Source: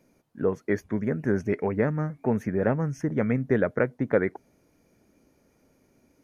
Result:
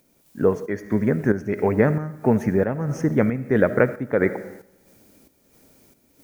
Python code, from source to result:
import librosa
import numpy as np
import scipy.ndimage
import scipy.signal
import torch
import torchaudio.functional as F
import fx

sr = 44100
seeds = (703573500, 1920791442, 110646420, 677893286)

y = fx.dmg_noise_colour(x, sr, seeds[0], colour='blue', level_db=-65.0)
y = fx.rev_freeverb(y, sr, rt60_s=1.1, hf_ratio=0.8, predelay_ms=25, drr_db=13.0)
y = fx.volume_shaper(y, sr, bpm=91, per_beat=1, depth_db=-9, release_ms=256.0, shape='slow start')
y = y * 10.0 ** (6.5 / 20.0)